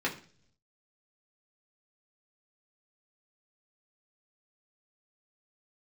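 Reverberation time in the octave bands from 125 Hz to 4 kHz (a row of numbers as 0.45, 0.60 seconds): 1.0, 0.75, 0.55, 0.40, 0.45, 0.55 seconds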